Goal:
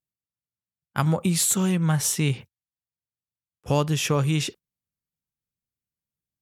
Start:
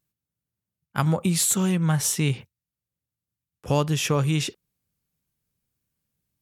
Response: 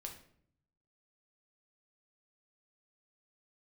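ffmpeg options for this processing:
-af "agate=range=-13dB:threshold=-40dB:ratio=16:detection=peak"

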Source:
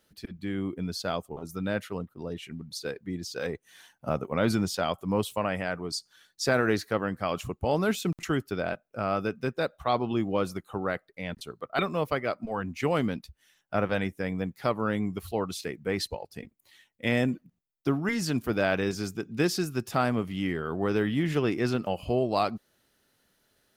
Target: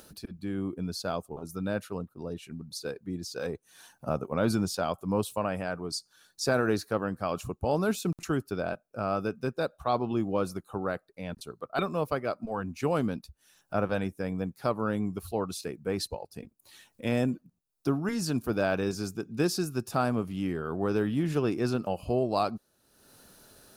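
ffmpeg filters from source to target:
ffmpeg -i in.wav -af "equalizer=frequency=2000:width_type=o:width=0.33:gain=-12,equalizer=frequency=3150:width_type=o:width=0.33:gain=-7,equalizer=frequency=10000:width_type=o:width=0.33:gain=4,acompressor=mode=upward:threshold=-40dB:ratio=2.5,volume=-1dB" out.wav

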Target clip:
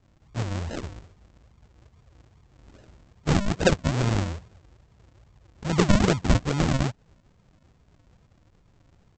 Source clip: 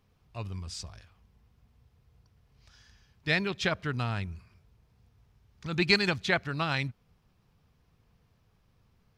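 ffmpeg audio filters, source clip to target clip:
ffmpeg -i in.wav -af "bandreject=frequency=2600:width=6.4,aresample=16000,acrusher=samples=27:mix=1:aa=0.000001:lfo=1:lforange=27:lforate=2.4,aresample=44100,volume=8dB" out.wav

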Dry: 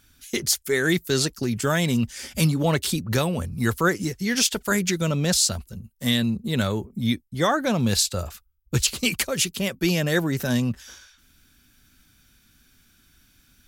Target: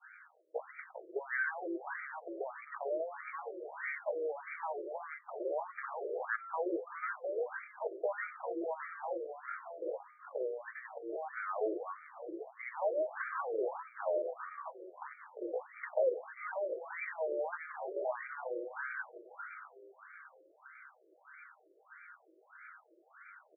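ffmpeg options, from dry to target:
ffmpeg -i in.wav -filter_complex "[0:a]lowshelf=frequency=190:gain=-2.5,bandreject=frequency=169.1:width_type=h:width=4,bandreject=frequency=338.2:width_type=h:width=4,bandreject=frequency=507.3:width_type=h:width=4,bandreject=frequency=676.4:width_type=h:width=4,bandreject=frequency=845.5:width_type=h:width=4,bandreject=frequency=1014.6:width_type=h:width=4,bandreject=frequency=1183.7:width_type=h:width=4,bandreject=frequency=1352.8:width_type=h:width=4,acompressor=threshold=-28dB:ratio=8,aecho=1:1:6.4:0.53,atempo=0.58,acrossover=split=150[link_01][link_02];[link_02]acompressor=threshold=-42dB:ratio=3[link_03];[link_01][link_03]amix=inputs=2:normalize=0,aresample=16000,asoftclip=type=tanh:threshold=-37.5dB,aresample=44100,asplit=6[link_04][link_05][link_06][link_07][link_08][link_09];[link_05]adelay=399,afreqshift=-130,volume=-4dB[link_10];[link_06]adelay=798,afreqshift=-260,volume=-12.4dB[link_11];[link_07]adelay=1197,afreqshift=-390,volume=-20.8dB[link_12];[link_08]adelay=1596,afreqshift=-520,volume=-29.2dB[link_13];[link_09]adelay=1995,afreqshift=-650,volume=-37.6dB[link_14];[link_04][link_10][link_11][link_12][link_13][link_14]amix=inputs=6:normalize=0,adynamicequalizer=threshold=0.00126:dfrequency=600:dqfactor=1.1:tfrequency=600:tqfactor=1.1:attack=5:release=100:ratio=0.375:range=2:mode=boostabove:tftype=bell,afftfilt=real='re*between(b*sr/1024,440*pow(1700/440,0.5+0.5*sin(2*PI*1.6*pts/sr))/1.41,440*pow(1700/440,0.5+0.5*sin(2*PI*1.6*pts/sr))*1.41)':imag='im*between(b*sr/1024,440*pow(1700/440,0.5+0.5*sin(2*PI*1.6*pts/sr))/1.41,440*pow(1700/440,0.5+0.5*sin(2*PI*1.6*pts/sr))*1.41)':win_size=1024:overlap=0.75,volume=13.5dB" out.wav

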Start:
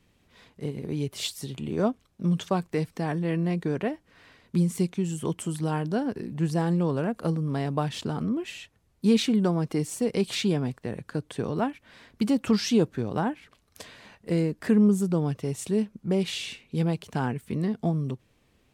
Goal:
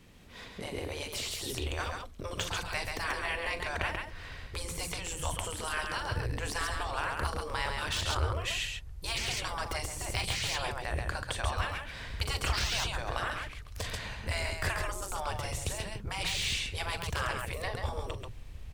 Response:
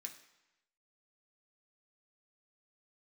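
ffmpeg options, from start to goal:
-af "afftfilt=real='re*lt(hypot(re,im),0.0708)':imag='im*lt(hypot(re,im),0.0708)':win_size=1024:overlap=0.75,asubboost=boost=11.5:cutoff=72,aecho=1:1:41|136:0.237|0.596,deesser=1,volume=7.5dB"

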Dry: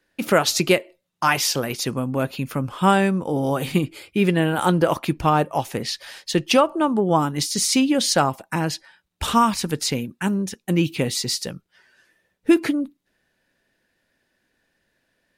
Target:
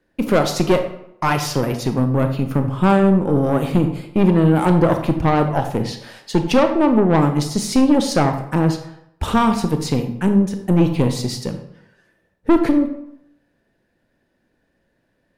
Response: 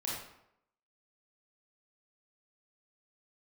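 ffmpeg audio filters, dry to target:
-filter_complex "[0:a]tiltshelf=frequency=1200:gain=7,aeval=exprs='(tanh(3.98*val(0)+0.5)-tanh(0.5))/3.98':channel_layout=same,asplit=2[link_01][link_02];[1:a]atrim=start_sample=2205[link_03];[link_02][link_03]afir=irnorm=-1:irlink=0,volume=-6dB[link_04];[link_01][link_04]amix=inputs=2:normalize=0"

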